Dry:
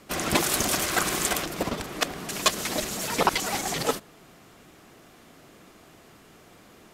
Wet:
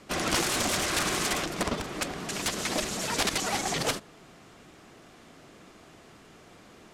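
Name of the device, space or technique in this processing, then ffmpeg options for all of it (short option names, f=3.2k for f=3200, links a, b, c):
overflowing digital effects unit: -af "aeval=exprs='(mod(7.94*val(0)+1,2)-1)/7.94':c=same,lowpass=8.8k"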